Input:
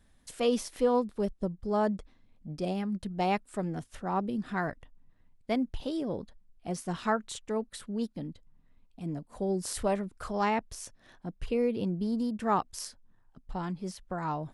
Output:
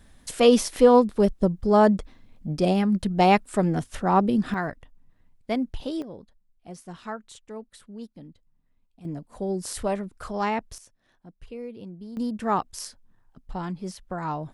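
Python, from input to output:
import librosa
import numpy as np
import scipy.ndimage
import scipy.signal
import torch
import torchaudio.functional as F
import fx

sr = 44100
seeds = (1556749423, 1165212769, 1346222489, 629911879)

y = fx.gain(x, sr, db=fx.steps((0.0, 10.5), (4.54, 3.0), (6.02, -6.5), (9.05, 2.0), (10.78, -9.0), (12.17, 3.0)))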